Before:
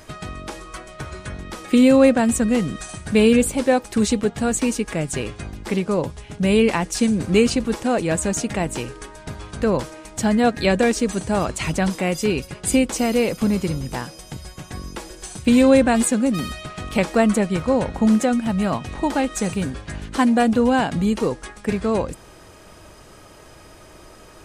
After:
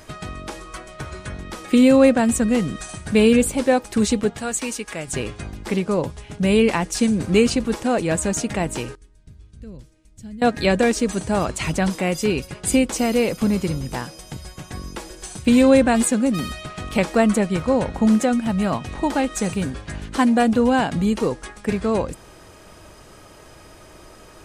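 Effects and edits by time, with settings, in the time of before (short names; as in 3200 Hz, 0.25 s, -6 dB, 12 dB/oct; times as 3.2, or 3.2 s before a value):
4.37–5.07 low shelf 490 Hz -11.5 dB
8.95–10.42 passive tone stack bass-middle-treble 10-0-1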